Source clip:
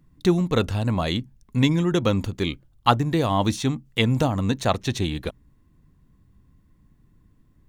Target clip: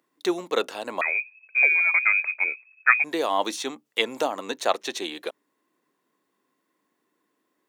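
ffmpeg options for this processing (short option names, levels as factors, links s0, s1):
-filter_complex "[0:a]asettb=1/sr,asplit=3[s0][s1][s2];[s0]atrim=end=1.014[s3];[s1]atrim=start=1.01:end=3.04,asetpts=PTS-STARTPTS,afade=t=in:d=0.004:c=qsin,afade=t=out:st=2.026:d=0.004:c=qsin,lowpass=f=2200:t=q:w=0.5098,lowpass=f=2200:t=q:w=0.6013,lowpass=f=2200:t=q:w=0.9,lowpass=f=2200:t=q:w=2.563,afreqshift=-2600[s4];[s2]atrim=start=3.036[s5];[s3][s4]acrossfade=d=0.004:c1=hsin:c2=qsin[s6];[s6][s5]acrossfade=d=0.004:c1=qsin:c2=hsin,highpass=f=370:w=0.5412,highpass=f=370:w=1.3066"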